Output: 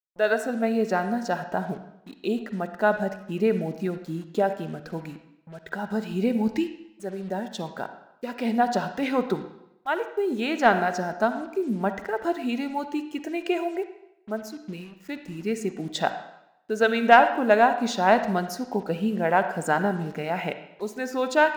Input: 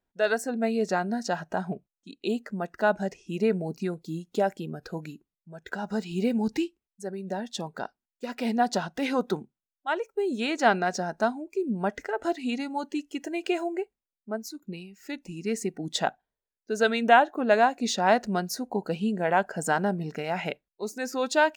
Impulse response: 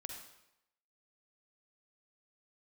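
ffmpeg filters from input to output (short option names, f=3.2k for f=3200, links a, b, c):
-filter_complex "[0:a]acrusher=bits=7:mix=0:aa=0.5,aeval=exprs='0.501*(cos(1*acos(clip(val(0)/0.501,-1,1)))-cos(1*PI/2))+0.0501*(cos(3*acos(clip(val(0)/0.501,-1,1)))-cos(3*PI/2))':c=same,asplit=2[a][b];[1:a]atrim=start_sample=2205,lowpass=3.7k[c];[b][c]afir=irnorm=-1:irlink=0,volume=2.5dB[d];[a][d]amix=inputs=2:normalize=0"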